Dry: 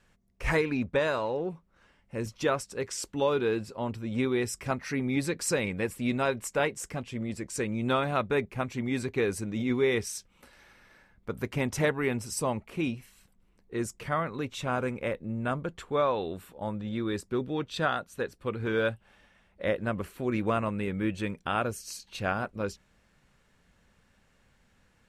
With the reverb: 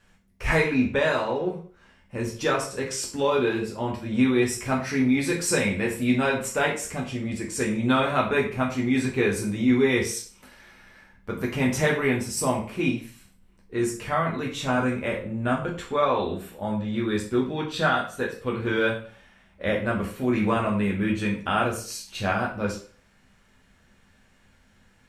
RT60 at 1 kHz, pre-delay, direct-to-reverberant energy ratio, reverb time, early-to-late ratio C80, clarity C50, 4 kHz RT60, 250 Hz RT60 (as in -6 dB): 0.45 s, 4 ms, -2.5 dB, 0.45 s, 12.0 dB, 8.0 dB, 0.40 s, 0.40 s